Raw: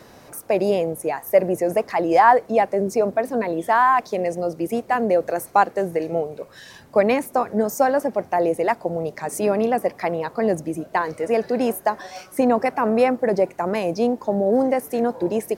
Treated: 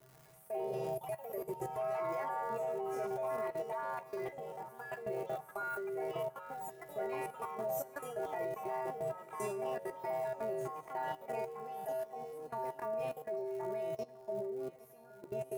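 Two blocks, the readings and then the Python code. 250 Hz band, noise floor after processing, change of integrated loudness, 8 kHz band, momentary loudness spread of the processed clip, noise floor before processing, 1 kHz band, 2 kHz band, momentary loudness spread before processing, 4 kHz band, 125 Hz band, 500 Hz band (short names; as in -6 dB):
-25.0 dB, -58 dBFS, -18.5 dB, -18.5 dB, 7 LU, -48 dBFS, -19.5 dB, -19.5 dB, 8 LU, -19.5 dB, -17.5 dB, -17.5 dB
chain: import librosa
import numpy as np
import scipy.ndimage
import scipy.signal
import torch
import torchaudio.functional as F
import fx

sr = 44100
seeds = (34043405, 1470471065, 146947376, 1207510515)

y = fx.comb_fb(x, sr, f0_hz=130.0, decay_s=0.8, harmonics='odd', damping=0.0, mix_pct=100)
y = fx.dmg_crackle(y, sr, seeds[0], per_s=230.0, level_db=-47.0)
y = fx.level_steps(y, sr, step_db=23)
y = fx.echo_pitch(y, sr, ms=121, semitones=3, count=2, db_per_echo=-6.0)
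y = fx.peak_eq(y, sr, hz=4000.0, db=-9.5, octaves=2.3)
y = fx.doubler(y, sr, ms=14.0, db=-13.0)
y = fx.echo_feedback(y, sr, ms=813, feedback_pct=57, wet_db=-18.5)
y = y * librosa.db_to_amplitude(9.0)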